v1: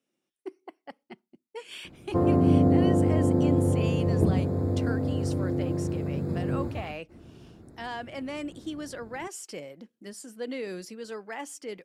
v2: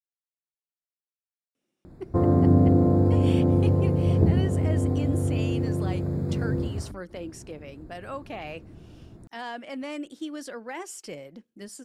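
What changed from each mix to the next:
speech: entry +1.55 s; master: add bass shelf 81 Hz +11 dB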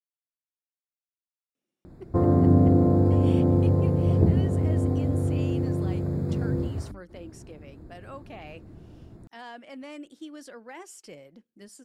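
speech -6.5 dB

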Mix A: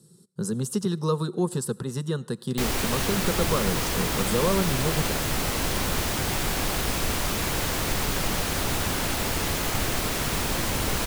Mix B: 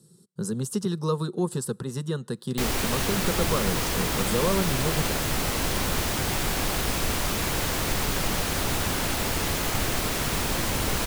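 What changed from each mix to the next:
speech: send -11.0 dB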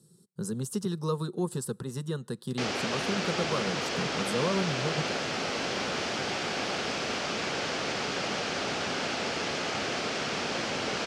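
speech -4.0 dB; background: add cabinet simulation 250–5500 Hz, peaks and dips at 310 Hz -4 dB, 1 kHz -6 dB, 1.9 kHz -3 dB, 3.8 kHz -4 dB

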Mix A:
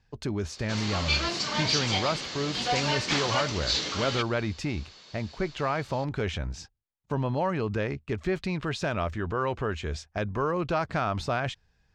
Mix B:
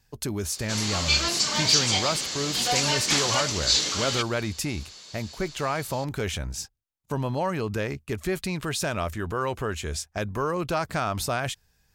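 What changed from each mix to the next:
master: remove distance through air 160 m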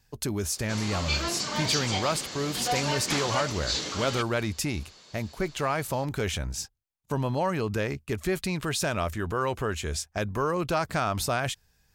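background: add treble shelf 2.4 kHz -10.5 dB

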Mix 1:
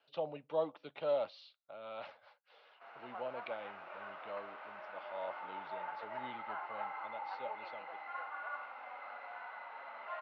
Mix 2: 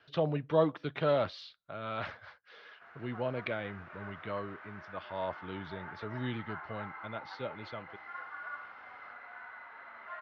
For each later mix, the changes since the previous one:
speech +11.5 dB; master: remove cabinet simulation 260–6200 Hz, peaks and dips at 360 Hz -3 dB, 560 Hz +8 dB, 830 Hz +8 dB, 1.7 kHz -7 dB, 2.7 kHz +6 dB, 4.2 kHz +3 dB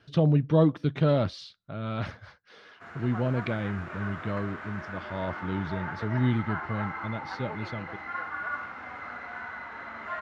background +9.0 dB; master: remove three-band isolator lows -14 dB, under 450 Hz, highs -23 dB, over 4.6 kHz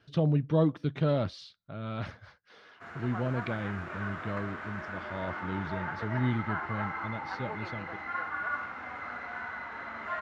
speech -4.0 dB

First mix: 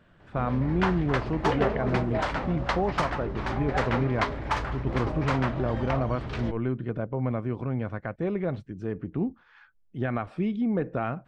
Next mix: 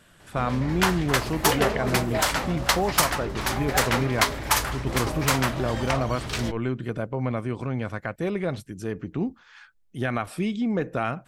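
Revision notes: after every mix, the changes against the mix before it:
master: remove tape spacing loss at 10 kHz 34 dB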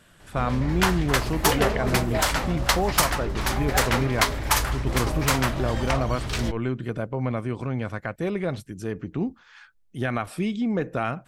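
speech: add bass shelf 61 Hz -9.5 dB; master: add bass shelf 68 Hz +11 dB

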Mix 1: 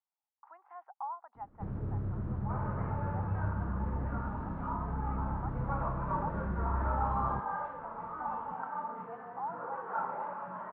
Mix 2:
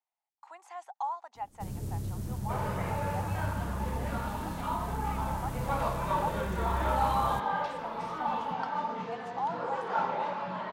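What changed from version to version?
first sound -9.0 dB; master: remove four-pole ladder low-pass 1.6 kHz, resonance 45%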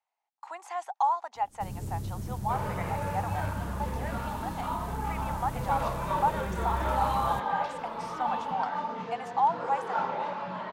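speech +8.5 dB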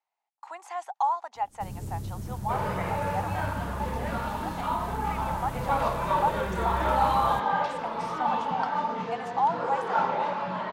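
second sound +4.5 dB

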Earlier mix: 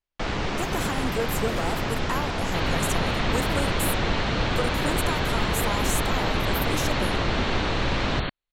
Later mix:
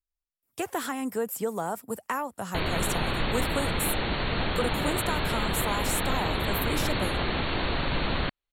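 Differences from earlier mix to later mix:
first sound: muted; master: add peaking EQ 6.3 kHz -10.5 dB 0.21 oct

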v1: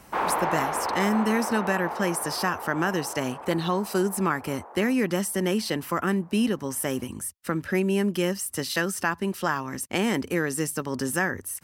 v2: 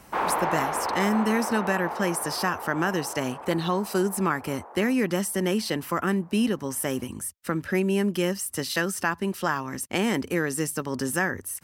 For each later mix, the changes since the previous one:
no change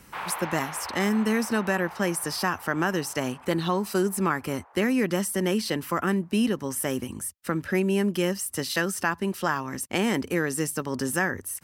background: add band-pass filter 3.2 kHz, Q 0.85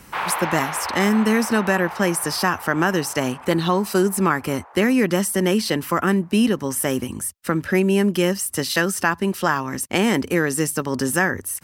speech +6.0 dB; background +9.0 dB

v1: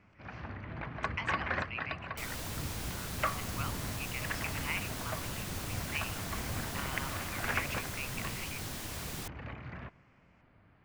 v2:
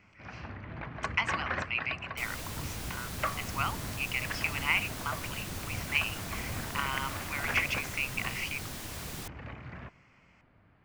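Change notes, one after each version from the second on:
speech +9.0 dB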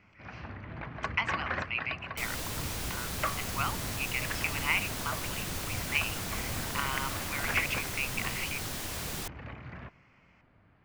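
speech: add distance through air 76 m; second sound +4.5 dB

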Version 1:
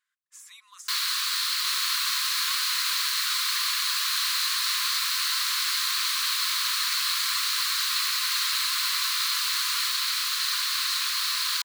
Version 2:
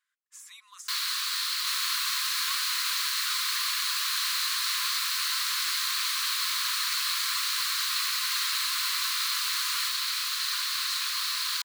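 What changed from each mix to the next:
first sound -3.0 dB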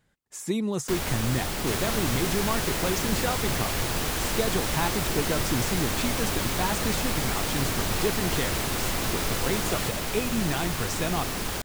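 speech +8.5 dB; first sound: add peaking EQ 4.2 kHz -14 dB 0.41 oct; master: remove brick-wall FIR high-pass 990 Hz

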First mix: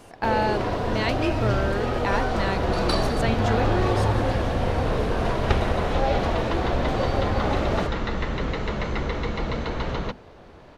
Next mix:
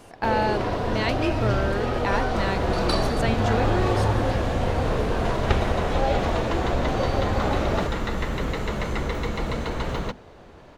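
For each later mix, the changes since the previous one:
second sound: remove low-pass 5.8 kHz 24 dB/octave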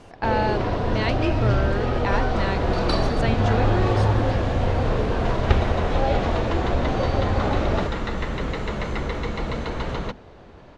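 first sound: add bass shelf 210 Hz +5 dB; master: add low-pass 6.1 kHz 12 dB/octave

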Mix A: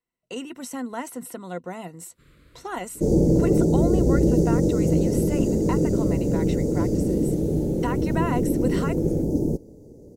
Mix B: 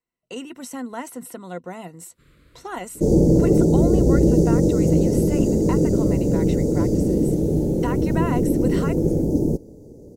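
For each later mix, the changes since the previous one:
second sound +3.0 dB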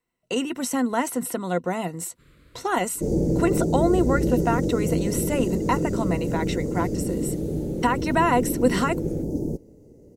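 speech +8.0 dB; second sound -7.0 dB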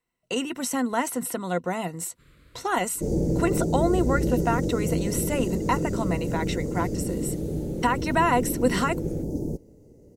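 master: add peaking EQ 320 Hz -3 dB 2.1 oct

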